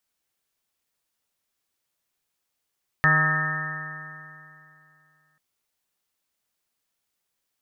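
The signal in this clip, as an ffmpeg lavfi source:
-f lavfi -i "aevalsrc='0.0841*pow(10,-3*t/2.7)*sin(2*PI*153.1*t)+0.0141*pow(10,-3*t/2.7)*sin(2*PI*306.79*t)+0.00944*pow(10,-3*t/2.7)*sin(2*PI*461.68*t)+0.0211*pow(10,-3*t/2.7)*sin(2*PI*618.33*t)+0.0224*pow(10,-3*t/2.7)*sin(2*PI*777.33*t)+0.02*pow(10,-3*t/2.7)*sin(2*PI*939.24*t)+0.0188*pow(10,-3*t/2.7)*sin(2*PI*1104.58*t)+0.0841*pow(10,-3*t/2.7)*sin(2*PI*1273.9*t)+0.0141*pow(10,-3*t/2.7)*sin(2*PI*1447.68*t)+0.0631*pow(10,-3*t/2.7)*sin(2*PI*1626.41*t)+0.141*pow(10,-3*t/2.7)*sin(2*PI*1810.54*t)':d=2.34:s=44100"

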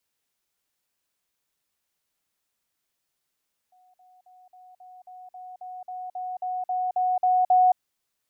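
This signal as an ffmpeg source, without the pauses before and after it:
-f lavfi -i "aevalsrc='pow(10,(-56.5+3*floor(t/0.27))/20)*sin(2*PI*735*t)*clip(min(mod(t,0.27),0.22-mod(t,0.27))/0.005,0,1)':d=4.05:s=44100"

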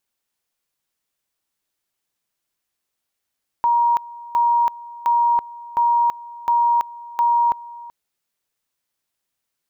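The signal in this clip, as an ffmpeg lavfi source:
-f lavfi -i "aevalsrc='pow(10,(-13.5-20*gte(mod(t,0.71),0.33))/20)*sin(2*PI*946*t)':d=4.26:s=44100"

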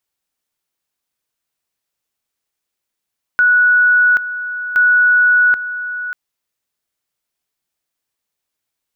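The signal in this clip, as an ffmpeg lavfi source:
-f lavfi -i "aevalsrc='pow(10,(-8-12.5*gte(mod(t,1.37),0.78))/20)*sin(2*PI*1470*t)':d=2.74:s=44100"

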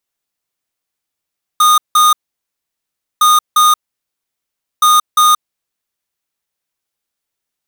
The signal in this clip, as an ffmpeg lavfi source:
-f lavfi -i "aevalsrc='0.376*(2*lt(mod(1230*t,1),0.5)-1)*clip(min(mod(mod(t,1.61),0.35),0.18-mod(mod(t,1.61),0.35))/0.005,0,1)*lt(mod(t,1.61),0.7)':d=4.83:s=44100"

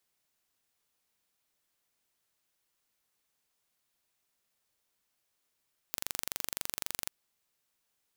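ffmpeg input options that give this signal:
-f lavfi -i "aevalsrc='0.473*eq(mod(n,1853),0)':d=1.16:s=44100"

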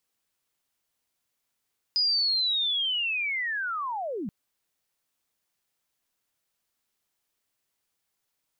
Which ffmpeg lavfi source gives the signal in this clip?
-f lavfi -i "aevalsrc='pow(10,(-21-9*t/2.33)/20)*sin(2*PI*(5000*t-4830*t*t/(2*2.33)))':d=2.33:s=44100"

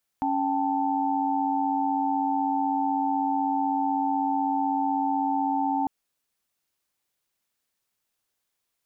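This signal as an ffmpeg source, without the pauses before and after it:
-f lavfi -i "aevalsrc='0.0447*(sin(2*PI*277.18*t)+sin(2*PI*783.99*t)+sin(2*PI*880*t))':d=5.65:s=44100"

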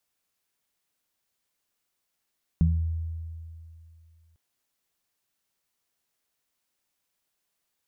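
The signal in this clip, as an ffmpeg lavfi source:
-f lavfi -i "aevalsrc='0.112*pow(10,-3*t/2.56)*sin(2*PI*81.8*t)+0.15*pow(10,-3*t/0.42)*sin(2*PI*163.6*t)':d=1.75:s=44100"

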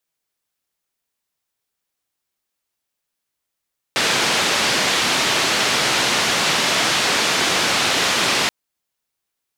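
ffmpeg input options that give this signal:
-f lavfi -i "anoisesrc=c=white:d=4.53:r=44100:seed=1,highpass=f=140,lowpass=f=4500,volume=-7dB"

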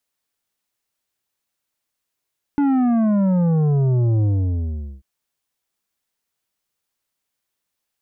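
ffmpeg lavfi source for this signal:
-f lavfi -i "aevalsrc='0.168*clip((2.44-t)/0.79,0,1)*tanh(2.82*sin(2*PI*290*2.44/log(65/290)*(exp(log(65/290)*t/2.44)-1)))/tanh(2.82)':d=2.44:s=44100"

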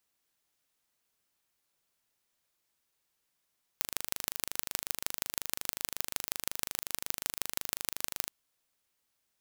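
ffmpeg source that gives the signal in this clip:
-f lavfi -i "aevalsrc='0.794*eq(mod(n,1729),0)*(0.5+0.5*eq(mod(n,6916),0))':d=4.5:s=44100"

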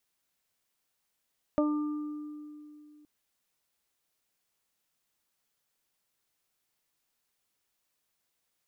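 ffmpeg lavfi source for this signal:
-f lavfi -i "aevalsrc='0.0631*pow(10,-3*t/2.87)*sin(2*PI*299*t)+0.0841*pow(10,-3*t/0.23)*sin(2*PI*598*t)+0.0106*pow(10,-3*t/1.01)*sin(2*PI*897*t)+0.0178*pow(10,-3*t/1.69)*sin(2*PI*1196*t)':d=1.47:s=44100"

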